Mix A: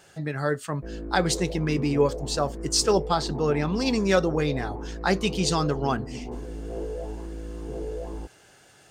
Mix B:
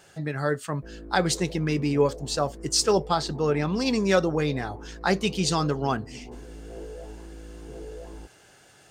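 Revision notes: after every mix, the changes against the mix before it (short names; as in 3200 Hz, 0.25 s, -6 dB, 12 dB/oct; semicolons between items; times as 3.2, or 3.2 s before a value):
background -6.5 dB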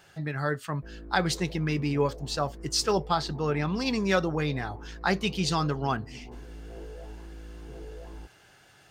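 master: add graphic EQ 250/500/8000 Hz -3/-5/-8 dB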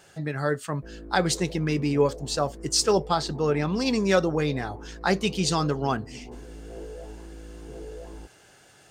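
master: add graphic EQ 250/500/8000 Hz +3/+5/+8 dB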